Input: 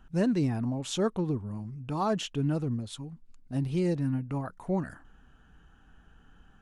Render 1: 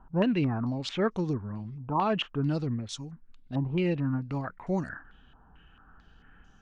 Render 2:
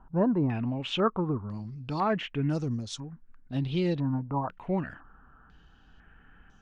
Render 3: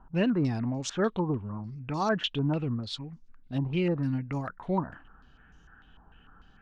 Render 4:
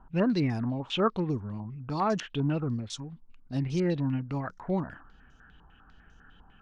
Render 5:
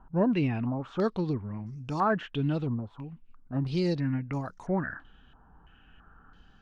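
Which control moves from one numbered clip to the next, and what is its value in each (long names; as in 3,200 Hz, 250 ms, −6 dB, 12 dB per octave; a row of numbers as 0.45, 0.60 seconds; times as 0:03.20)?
low-pass on a step sequencer, speed: 4.5, 2, 6.7, 10, 3 Hertz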